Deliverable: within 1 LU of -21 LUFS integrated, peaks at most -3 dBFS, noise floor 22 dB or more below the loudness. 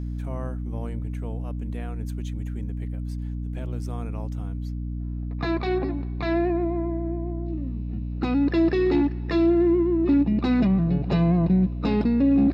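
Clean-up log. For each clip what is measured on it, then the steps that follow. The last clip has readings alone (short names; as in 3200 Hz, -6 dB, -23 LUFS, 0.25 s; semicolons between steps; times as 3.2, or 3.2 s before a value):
hum 60 Hz; harmonics up to 300 Hz; hum level -28 dBFS; loudness -25.0 LUFS; peak -11.0 dBFS; loudness target -21.0 LUFS
-> notches 60/120/180/240/300 Hz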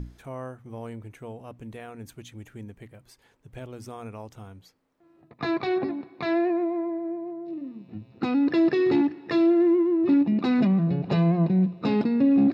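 hum none; loudness -23.5 LUFS; peak -12.0 dBFS; loudness target -21.0 LUFS
-> gain +2.5 dB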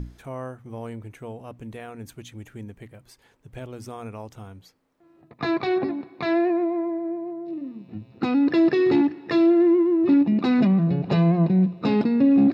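loudness -21.0 LUFS; peak -9.5 dBFS; noise floor -59 dBFS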